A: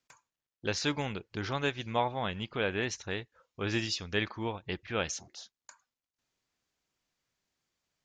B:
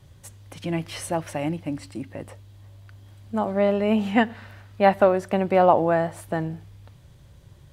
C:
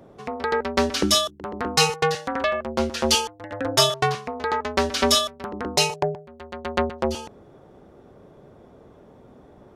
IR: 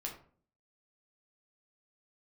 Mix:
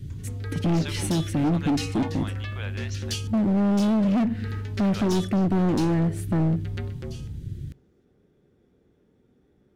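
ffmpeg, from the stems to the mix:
-filter_complex "[0:a]highpass=680,volume=-4.5dB,asplit=3[link_01][link_02][link_03];[link_01]atrim=end=3.13,asetpts=PTS-STARTPTS,afade=type=out:start_time=3.126:duration=0.004:curve=hsin[link_04];[link_02]atrim=start=3.13:end=4.78,asetpts=PTS-STARTPTS,volume=0[link_05];[link_03]atrim=start=4.78,asetpts=PTS-STARTPTS,afade=type=in:duration=0.004:curve=hsin[link_06];[link_04][link_05][link_06]concat=n=3:v=0:a=1[link_07];[1:a]lowshelf=frequency=420:width_type=q:width=1.5:gain=13,aeval=exprs='(tanh(2.51*val(0)+0.2)-tanh(0.2))/2.51':channel_layout=same,volume=1.5dB,asplit=2[link_08][link_09];[link_09]volume=-21.5dB[link_10];[2:a]volume=-13.5dB,asplit=2[link_11][link_12];[link_12]volume=-10dB[link_13];[link_08][link_11]amix=inputs=2:normalize=0,asuperstop=centerf=820:order=4:qfactor=0.84,acompressor=threshold=-19dB:ratio=2,volume=0dB[link_14];[3:a]atrim=start_sample=2205[link_15];[link_10][link_13]amix=inputs=2:normalize=0[link_16];[link_16][link_15]afir=irnorm=-1:irlink=0[link_17];[link_07][link_14][link_17]amix=inputs=3:normalize=0,asoftclip=type=hard:threshold=-19.5dB"

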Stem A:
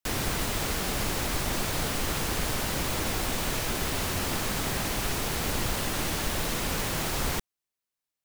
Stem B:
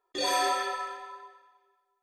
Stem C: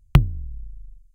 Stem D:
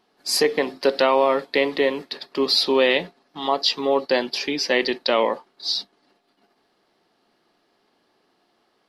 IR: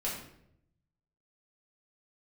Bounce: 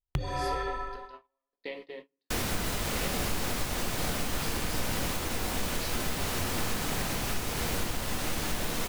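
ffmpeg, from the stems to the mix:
-filter_complex "[0:a]adelay=2250,volume=-2.5dB,asplit=2[link_01][link_02];[link_02]volume=-7.5dB[link_03];[1:a]aemphasis=mode=reproduction:type=riaa,volume=-2.5dB,asplit=2[link_04][link_05];[link_05]volume=-19dB[link_06];[2:a]volume=-4.5dB,asplit=2[link_07][link_08];[link_08]volume=-20dB[link_09];[3:a]acompressor=threshold=-46dB:ratio=1.5,aeval=exprs='val(0)*pow(10,-25*if(lt(mod(0.7*n/s,1),2*abs(0.7)/1000),1-mod(0.7*n/s,1)/(2*abs(0.7)/1000),(mod(0.7*n/s,1)-2*abs(0.7)/1000)/(1-2*abs(0.7)/1000))/20)':channel_layout=same,adelay=100,volume=-9dB,asplit=2[link_10][link_11];[link_11]volume=-5.5dB[link_12];[4:a]atrim=start_sample=2205[link_13];[link_03][link_06][link_09][link_12]amix=inputs=4:normalize=0[link_14];[link_14][link_13]afir=irnorm=-1:irlink=0[link_15];[link_01][link_04][link_07][link_10][link_15]amix=inputs=5:normalize=0,agate=range=-32dB:threshold=-43dB:ratio=16:detection=peak,alimiter=limit=-19.5dB:level=0:latency=1:release=456"

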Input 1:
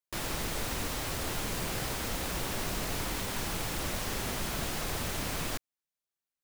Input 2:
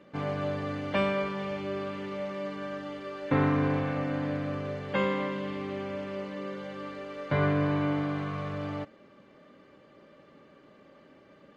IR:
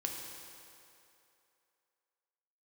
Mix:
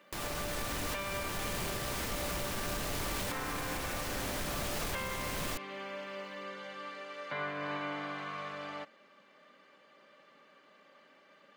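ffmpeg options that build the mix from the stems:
-filter_complex "[0:a]aeval=exprs='0.1*sin(PI/2*2*val(0)/0.1)':channel_layout=same,acompressor=threshold=-34dB:ratio=6,volume=1dB[link_01];[1:a]highpass=frequency=210:width=0.5412,highpass=frequency=210:width=1.3066,equalizer=frequency=310:width=0.66:gain=-15,volume=2dB[link_02];[link_01][link_02]amix=inputs=2:normalize=0,alimiter=level_in=3.5dB:limit=-24dB:level=0:latency=1:release=270,volume=-3.5dB"

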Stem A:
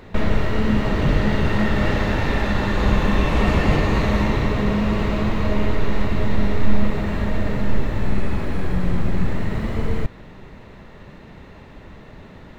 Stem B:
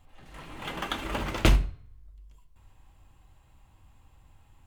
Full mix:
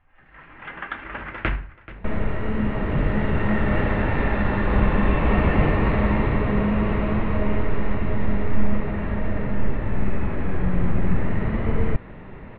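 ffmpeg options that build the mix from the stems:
ffmpeg -i stem1.wav -i stem2.wav -filter_complex "[0:a]dynaudnorm=framelen=310:gausssize=9:maxgain=11.5dB,adelay=1900,volume=-5dB[link_01];[1:a]equalizer=frequency=1700:width_type=o:width=1:gain=12.5,volume=-5.5dB,asplit=2[link_02][link_03];[link_03]volume=-17dB,aecho=0:1:432:1[link_04];[link_01][link_02][link_04]amix=inputs=3:normalize=0,lowpass=frequency=2600:width=0.5412,lowpass=frequency=2600:width=1.3066" out.wav

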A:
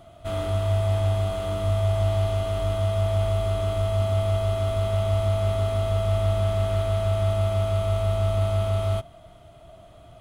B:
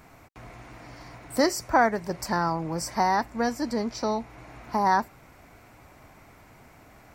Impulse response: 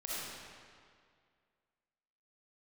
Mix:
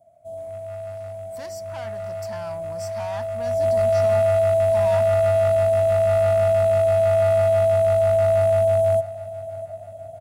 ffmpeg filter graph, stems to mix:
-filter_complex "[0:a]firequalizer=gain_entry='entry(360,0);entry(650,13);entry(1200,-28);entry(7300,2)':delay=0.05:min_phase=1,asoftclip=type=hard:threshold=-12dB,volume=-4dB,afade=type=in:start_time=3.39:duration=0.29:silence=0.354813,asplit=2[link_01][link_02];[link_02]volume=-17.5dB[link_03];[1:a]agate=range=-33dB:threshold=-40dB:ratio=3:detection=peak,asoftclip=type=tanh:threshold=-24.5dB,volume=-10dB[link_04];[link_03]aecho=0:1:651|1302|1953|2604|3255|3906|4557:1|0.5|0.25|0.125|0.0625|0.0312|0.0156[link_05];[link_01][link_04][link_05]amix=inputs=3:normalize=0,highpass=120,equalizer=frequency=370:width_type=o:width=0.8:gain=-13.5,dynaudnorm=framelen=300:gausssize=17:maxgain=5.5dB"

